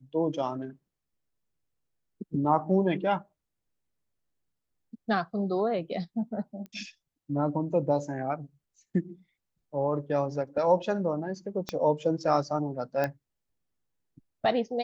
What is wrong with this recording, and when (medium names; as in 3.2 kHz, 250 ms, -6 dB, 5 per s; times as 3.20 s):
6.66 s: pop -31 dBFS
11.69 s: pop -17 dBFS
13.04 s: pop -16 dBFS